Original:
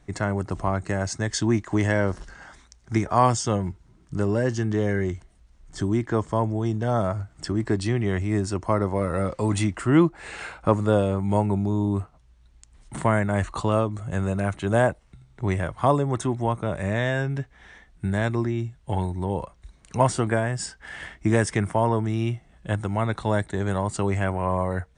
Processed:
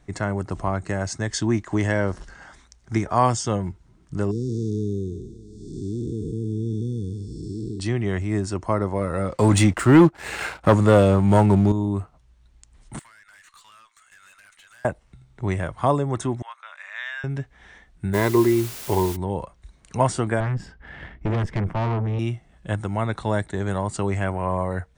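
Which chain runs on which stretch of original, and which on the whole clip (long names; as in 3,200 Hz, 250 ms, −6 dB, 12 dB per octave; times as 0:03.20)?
0:04.31–0:07.80: spectrum smeared in time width 392 ms + linear-phase brick-wall band-stop 480–3,400 Hz + single-tap delay 752 ms −19.5 dB
0:09.37–0:11.72: high-pass filter 47 Hz 24 dB per octave + leveller curve on the samples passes 2
0:12.99–0:14.85: high-pass filter 1,500 Hz 24 dB per octave + downward compressor 8 to 1, threshold −42 dBFS + tube saturation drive 46 dB, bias 0.25
0:16.42–0:17.24: high-pass filter 1,300 Hz 24 dB per octave + high-frequency loss of the air 130 metres
0:18.13–0:19.15: hollow resonant body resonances 390/990/2,000/4,000 Hz, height 15 dB, ringing for 35 ms + background noise white −37 dBFS
0:20.40–0:22.19: low-pass filter 3,000 Hz + low-shelf EQ 400 Hz +11.5 dB + tube saturation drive 20 dB, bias 0.7
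whole clip: no processing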